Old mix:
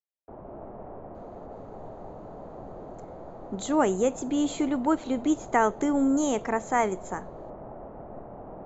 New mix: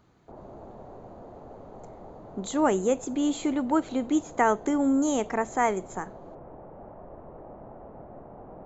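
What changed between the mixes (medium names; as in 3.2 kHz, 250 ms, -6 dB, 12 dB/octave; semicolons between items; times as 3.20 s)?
speech: entry -1.15 s; background: send -7.0 dB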